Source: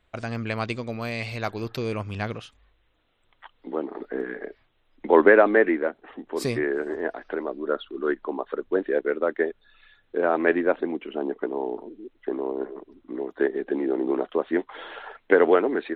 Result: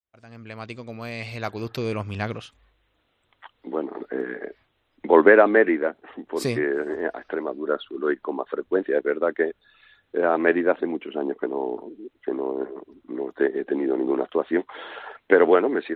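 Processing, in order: opening faded in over 1.86 s; HPF 41 Hz; gain +1.5 dB

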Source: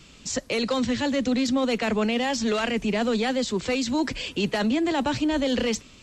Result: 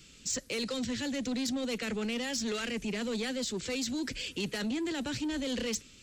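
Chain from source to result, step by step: band shelf 840 Hz -9 dB 1.1 oct; soft clip -20 dBFS, distortion -18 dB; high shelf 5600 Hz +10.5 dB; gain -7.5 dB

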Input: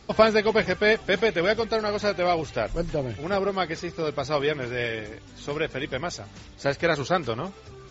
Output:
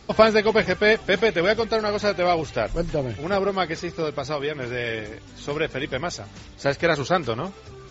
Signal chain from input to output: 4.04–4.87 compressor, threshold -25 dBFS, peak gain reduction 6.5 dB; gain +2.5 dB

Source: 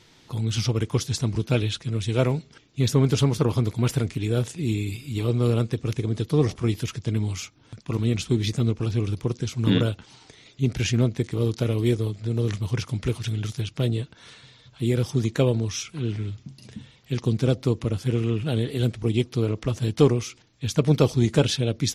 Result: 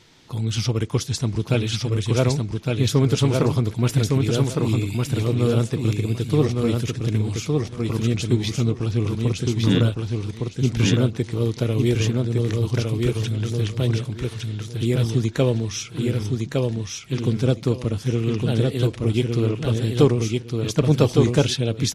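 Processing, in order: feedback echo 1.16 s, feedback 21%, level -3 dB; gain +1.5 dB

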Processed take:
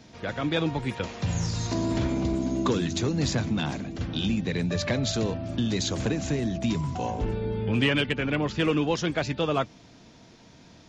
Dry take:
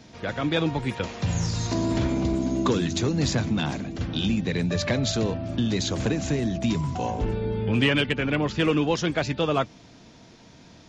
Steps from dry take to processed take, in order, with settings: 5.14–6.01 high shelf 6700 Hz +5 dB; gain -2 dB

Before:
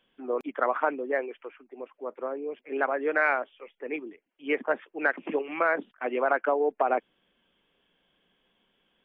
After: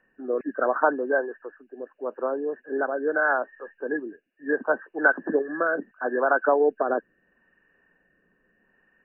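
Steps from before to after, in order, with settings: nonlinear frequency compression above 1500 Hz 4:1; rotary speaker horn 0.75 Hz; gain +6 dB

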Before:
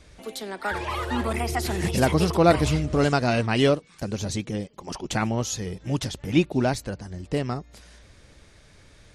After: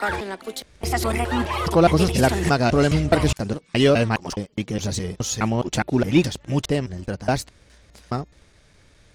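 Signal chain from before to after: slices in reverse order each 0.208 s, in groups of 4; sample leveller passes 1

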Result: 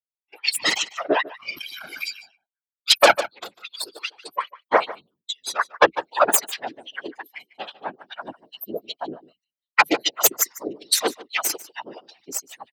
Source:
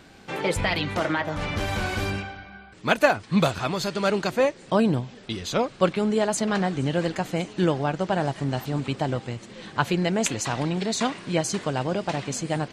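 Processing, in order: per-bin expansion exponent 3; gate -55 dBFS, range -22 dB; added harmonics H 4 -8 dB, 8 -10 dB, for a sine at -7 dBFS; high shelf 5600 Hz +10 dB; 3.2–4.62 compressor 6:1, threshold -34 dBFS, peak gain reduction 20 dB; 10.29–10.74 spectral gain 2200–4400 Hz -13 dB; whisperiser; LFO high-pass sine 2.5 Hz 330–4000 Hz; on a send: echo 0.148 s -18.5 dB; on the sum: maximiser +7.5 dB; gain -1 dB

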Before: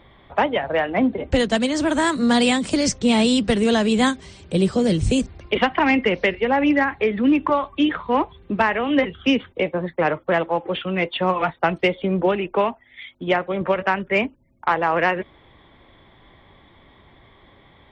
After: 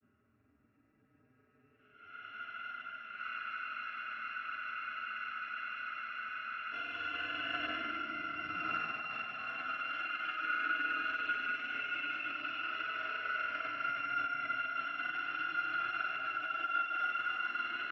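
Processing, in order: FFT order left unsorted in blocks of 256 samples; shoebox room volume 260 m³, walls furnished, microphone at 1.3 m; level quantiser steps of 11 dB; Paulstretch 35×, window 0.05 s, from 14.56; negative-ratio compressor -28 dBFS, ratio -1; air absorption 110 m; grains 0.105 s, grains 20/s, spray 24 ms, pitch spread up and down by 0 st; speaker cabinet 230–2300 Hz, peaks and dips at 320 Hz +6 dB, 600 Hz -5 dB, 920 Hz -9 dB, 1400 Hz +10 dB, 1900 Hz +3 dB; spectral freeze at 3.24, 3.48 s; gain +2 dB

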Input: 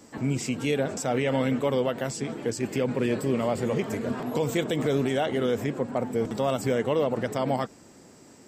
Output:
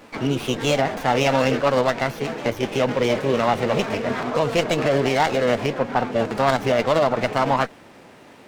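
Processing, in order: bell 1700 Hz +8 dB 2.6 oct; formant shift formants +4 st; downsampling 16000 Hz; running maximum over 5 samples; gain +3.5 dB

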